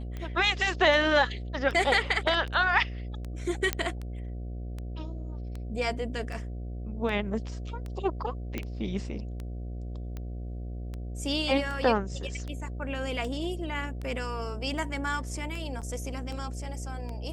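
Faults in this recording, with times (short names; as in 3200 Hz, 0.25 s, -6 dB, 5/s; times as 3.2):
buzz 60 Hz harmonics 12 -36 dBFS
tick 78 rpm -25 dBFS
3.73 pop -10 dBFS
8.58 pop -18 dBFS
15.81–15.82 gap 7.3 ms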